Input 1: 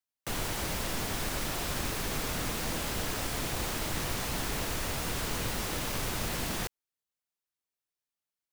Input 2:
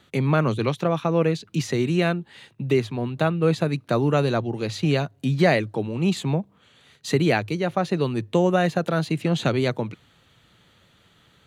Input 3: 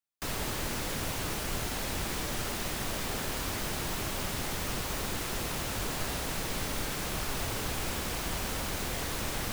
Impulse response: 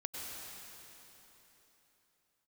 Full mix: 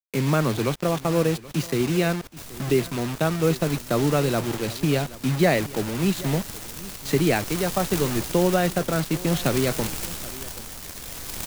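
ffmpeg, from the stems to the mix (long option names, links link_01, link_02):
-filter_complex "[0:a]aeval=exprs='val(0)*pow(10,-32*if(lt(mod(-6.6*n/s,1),2*abs(-6.6)/1000),1-mod(-6.6*n/s,1)/(2*abs(-6.6)/1000),(mod(-6.6*n/s,1)-2*abs(-6.6)/1000)/(1-2*abs(-6.6)/1000))/20)':channel_layout=same,volume=-5.5dB,asplit=2[link_01][link_02];[link_02]volume=-21.5dB[link_03];[1:a]equalizer=frequency=290:width_type=o:width=1.1:gain=2.5,acrusher=bits=4:mix=0:aa=0.000001,volume=-2dB,asplit=2[link_04][link_05];[link_05]volume=-19dB[link_06];[2:a]bass=frequency=250:gain=3,treble=frequency=4000:gain=8,acrusher=bits=5:dc=4:mix=0:aa=0.000001,tremolo=f=0.52:d=0.52,adelay=2150,volume=-1dB,afade=type=in:start_time=6.07:duration=0.73:silence=0.398107[link_07];[link_03][link_06]amix=inputs=2:normalize=0,aecho=0:1:778:1[link_08];[link_01][link_04][link_07][link_08]amix=inputs=4:normalize=0"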